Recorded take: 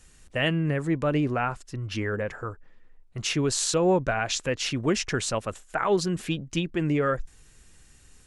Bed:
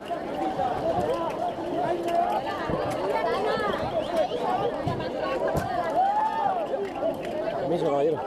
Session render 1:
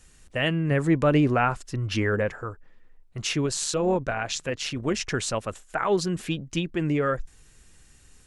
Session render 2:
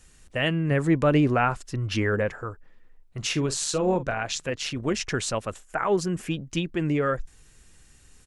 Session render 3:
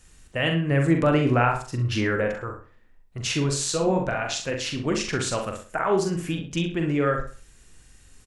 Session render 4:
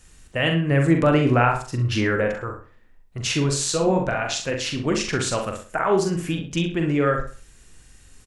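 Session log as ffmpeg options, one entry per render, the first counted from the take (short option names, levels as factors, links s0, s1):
-filter_complex "[0:a]asettb=1/sr,asplit=3[s0][s1][s2];[s0]atrim=end=3.464[s3];[s1]atrim=start=3.46:end=5.01,asetpts=PTS-STARTPTS,afade=t=in:d=0.004:c=qsin,afade=t=out:st=1.546:d=0.004:c=qsin,tremolo=f=150:d=0.462[s4];[s2]atrim=start=5.006[s5];[s3][s4]acrossfade=d=0.004:c1=hsin:c2=qsin[s6];[s6][s5]acrossfade=d=0.004:c1=qsin:c2=hsin,asplit=3[s7][s8][s9];[s7]atrim=end=0.712[s10];[s8]atrim=start=0.708:end=2.302,asetpts=PTS-STARTPTS,volume=1.68[s11];[s9]atrim=start=2.298[s12];[s10][s11]acrossfade=d=0.004:c1=hsin:c2=hsin[s13];[s13][s12]acrossfade=d=0.004:c1=hsin:c2=hsin"
-filter_complex "[0:a]asplit=3[s0][s1][s2];[s0]afade=t=out:st=3.21:d=0.02[s3];[s1]asplit=2[s4][s5];[s5]adelay=44,volume=0.211[s6];[s4][s6]amix=inputs=2:normalize=0,afade=t=in:st=3.21:d=0.02,afade=t=out:st=4.13:d=0.02[s7];[s2]afade=t=in:st=4.13:d=0.02[s8];[s3][s7][s8]amix=inputs=3:normalize=0,asettb=1/sr,asplit=3[s9][s10][s11];[s9]atrim=end=5.654[s12];[s10]atrim=start=5.65:end=6.34,asetpts=PTS-STARTPTS,afade=t=in:d=0.004:c=qsin,afade=t=out:st=0.686:d=0.004:c=qsin,equalizer=f=3900:w=2.4:g=-9[s13];[s11]atrim=start=6.336[s14];[s12][s13]acrossfade=d=0.004:c1=hsin:c2=qsin[s15];[s15][s14]acrossfade=d=0.004:c1=qsin:c2=hsin"
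-filter_complex "[0:a]asplit=2[s0][s1];[s1]adelay=42,volume=0.501[s2];[s0][s2]amix=inputs=2:normalize=0,asplit=2[s3][s4];[s4]adelay=65,lowpass=f=3900:p=1,volume=0.447,asplit=2[s5][s6];[s6]adelay=65,lowpass=f=3900:p=1,volume=0.31,asplit=2[s7][s8];[s8]adelay=65,lowpass=f=3900:p=1,volume=0.31,asplit=2[s9][s10];[s10]adelay=65,lowpass=f=3900:p=1,volume=0.31[s11];[s3][s5][s7][s9][s11]amix=inputs=5:normalize=0"
-af "volume=1.33"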